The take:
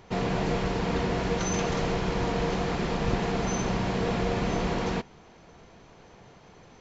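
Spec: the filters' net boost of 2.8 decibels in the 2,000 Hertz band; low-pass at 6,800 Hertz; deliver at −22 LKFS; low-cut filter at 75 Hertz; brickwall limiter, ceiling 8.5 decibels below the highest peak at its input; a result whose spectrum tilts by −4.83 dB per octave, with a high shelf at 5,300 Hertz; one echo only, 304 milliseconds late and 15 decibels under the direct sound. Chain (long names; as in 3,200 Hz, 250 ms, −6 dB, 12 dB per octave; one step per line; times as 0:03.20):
high-pass filter 75 Hz
low-pass filter 6,800 Hz
parametric band 2,000 Hz +4.5 dB
high-shelf EQ 5,300 Hz −7.5 dB
brickwall limiter −23.5 dBFS
single-tap delay 304 ms −15 dB
level +10 dB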